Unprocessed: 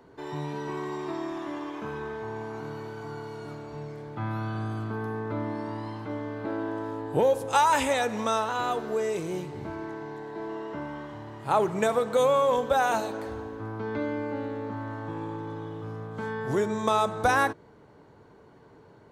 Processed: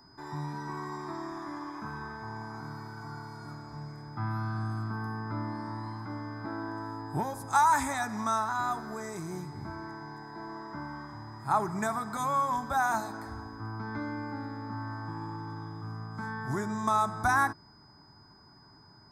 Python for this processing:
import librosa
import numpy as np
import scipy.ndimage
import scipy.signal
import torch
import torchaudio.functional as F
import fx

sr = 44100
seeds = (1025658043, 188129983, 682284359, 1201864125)

y = fx.fixed_phaser(x, sr, hz=1200.0, stages=4)
y = y + 10.0 ** (-59.0 / 20.0) * np.sin(2.0 * np.pi * 5000.0 * np.arange(len(y)) / sr)